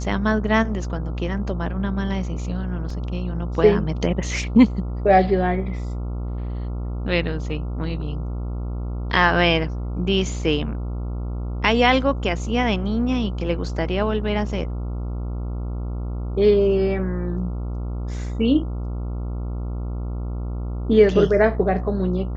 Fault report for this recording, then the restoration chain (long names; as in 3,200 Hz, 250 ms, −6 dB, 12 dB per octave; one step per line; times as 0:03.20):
mains buzz 60 Hz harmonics 23 −27 dBFS
0:02.90: drop-out 3.6 ms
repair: hum removal 60 Hz, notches 23
repair the gap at 0:02.90, 3.6 ms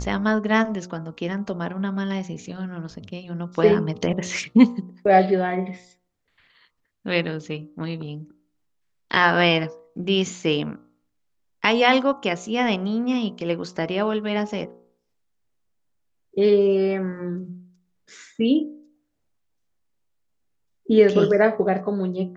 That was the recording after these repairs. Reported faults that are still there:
none of them is left